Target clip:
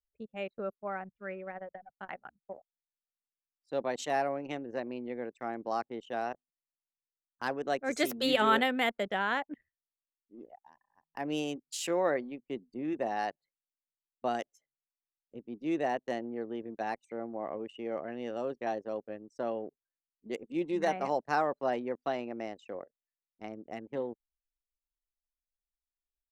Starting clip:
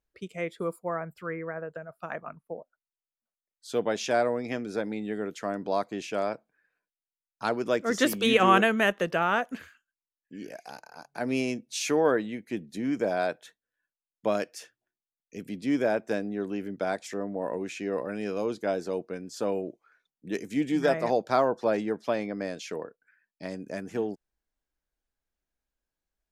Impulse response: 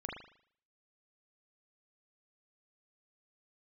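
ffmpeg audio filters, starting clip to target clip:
-af "anlmdn=3.98,asetrate=50951,aresample=44100,atempo=0.865537,volume=-5.5dB"

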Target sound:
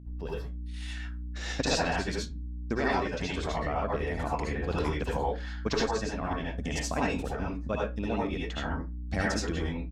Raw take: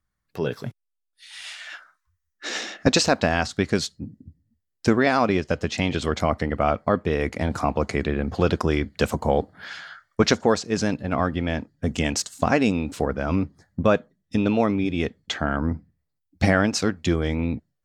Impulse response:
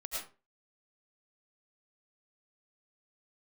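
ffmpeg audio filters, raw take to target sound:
-filter_complex "[0:a]aeval=exprs='val(0)+0.0224*(sin(2*PI*60*n/s)+sin(2*PI*2*60*n/s)/2+sin(2*PI*3*60*n/s)/3+sin(2*PI*4*60*n/s)/4+sin(2*PI*5*60*n/s)/5)':c=same,atempo=1.8[a];[1:a]atrim=start_sample=2205,asetrate=61740,aresample=44100[b];[a][b]afir=irnorm=-1:irlink=0,volume=-4dB"

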